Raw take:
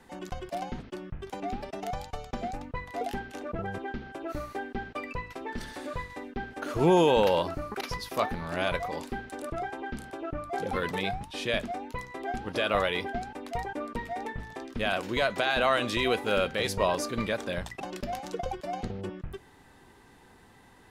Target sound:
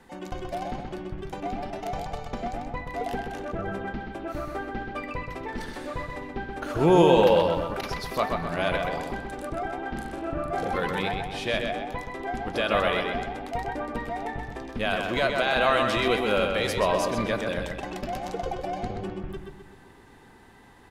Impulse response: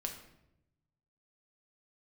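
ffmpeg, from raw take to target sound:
-filter_complex "[0:a]asettb=1/sr,asplit=3[link_01][link_02][link_03];[link_01]atrim=end=9.834[link_04];[link_02]atrim=start=9.83:end=10.68,asetpts=PTS-STARTPTS,afade=type=in:duration=0.004:curve=qsin,afade=type=out:start_time=0.846:duration=0.004:curve=qsin,asplit=2[link_05][link_06];[link_06]adelay=42,volume=-3.5dB[link_07];[link_05][link_07]amix=inputs=2:normalize=0,atrim=end_sample=37485[link_08];[link_03]atrim=start=10.676[link_09];[link_04][link_08]acrossfade=duration=0.004:curve1=hsin:curve2=qsin[link_10];[link_10][link_09]acrossfade=duration=0.004:curve1=qsin:curve2=hsin,asplit=2[link_11][link_12];[link_12]adelay=128,lowpass=frequency=4800:poles=1,volume=-4dB,asplit=2[link_13][link_14];[link_14]adelay=128,lowpass=frequency=4800:poles=1,volume=0.49,asplit=2[link_15][link_16];[link_16]adelay=128,lowpass=frequency=4800:poles=1,volume=0.49,asplit=2[link_17][link_18];[link_18]adelay=128,lowpass=frequency=4800:poles=1,volume=0.49,asplit=2[link_19][link_20];[link_20]adelay=128,lowpass=frequency=4800:poles=1,volume=0.49,asplit=2[link_21][link_22];[link_22]adelay=128,lowpass=frequency=4800:poles=1,volume=0.49[link_23];[link_11][link_13][link_15][link_17][link_19][link_21][link_23]amix=inputs=7:normalize=0,asplit=2[link_24][link_25];[1:a]atrim=start_sample=2205,lowpass=4400[link_26];[link_25][link_26]afir=irnorm=-1:irlink=0,volume=-11dB[link_27];[link_24][link_27]amix=inputs=2:normalize=0"

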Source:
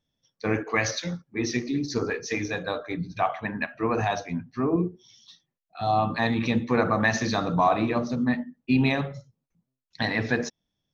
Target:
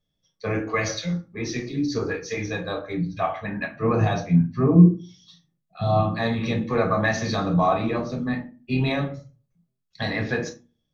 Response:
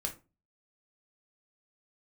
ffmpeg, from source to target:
-filter_complex "[0:a]asettb=1/sr,asplit=3[link_01][link_02][link_03];[link_01]atrim=end=3.724[link_04];[link_02]atrim=start=3.72:end=6.01,asetpts=PTS-STARTPTS,afade=type=in:duration=0.004:curve=qsin,afade=type=out:start_time=2.286:duration=0.004:curve=qsin,equalizer=frequency=160:width_type=o:width=1.6:gain=10.5[link_05];[link_03]atrim=start=6.006[link_06];[link_04][link_05]acrossfade=duration=0.004:curve1=hsin:curve2=qsin[link_07];[link_07][link_06]acrossfade=duration=0.004:curve1=qsin:curve2=hsin[link_08];[1:a]atrim=start_sample=2205,asetrate=42777,aresample=44100[link_09];[link_08][link_09]afir=irnorm=-1:irlink=0,volume=-1.5dB"

